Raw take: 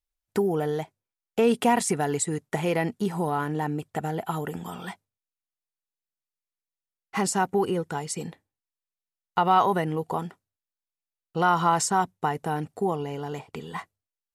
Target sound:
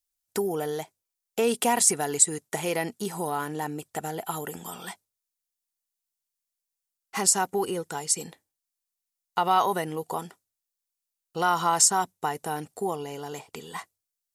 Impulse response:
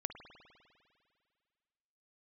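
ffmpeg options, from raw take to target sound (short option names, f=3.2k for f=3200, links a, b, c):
-af "bass=f=250:g=-7,treble=f=4k:g=12,volume=-2dB"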